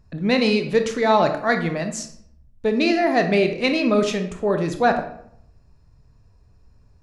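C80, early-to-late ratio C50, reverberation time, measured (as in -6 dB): 12.5 dB, 9.0 dB, 0.70 s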